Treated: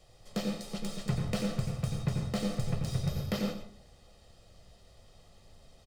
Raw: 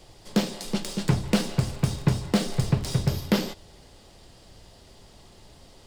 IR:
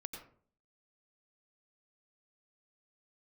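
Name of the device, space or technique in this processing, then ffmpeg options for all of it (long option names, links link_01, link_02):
microphone above a desk: -filter_complex "[0:a]aecho=1:1:1.6:0.52[link_01];[1:a]atrim=start_sample=2205[link_02];[link_01][link_02]afir=irnorm=-1:irlink=0,volume=-6.5dB"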